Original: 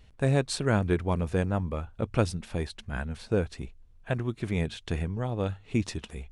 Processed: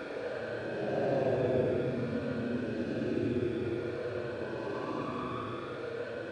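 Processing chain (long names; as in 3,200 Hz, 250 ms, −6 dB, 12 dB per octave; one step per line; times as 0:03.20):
auto-filter band-pass sine 2.1 Hz 290–4,600 Hz
echo that builds up and dies away 82 ms, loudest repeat 8, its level −10 dB
extreme stretch with random phases 23×, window 0.05 s, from 0:04.06
level +4.5 dB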